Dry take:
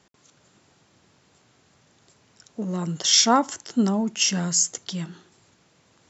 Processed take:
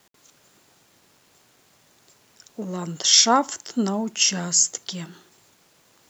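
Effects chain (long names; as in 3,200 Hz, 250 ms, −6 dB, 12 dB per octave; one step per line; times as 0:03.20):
bass and treble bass −6 dB, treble +2 dB
bit-depth reduction 10 bits, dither none
level +1 dB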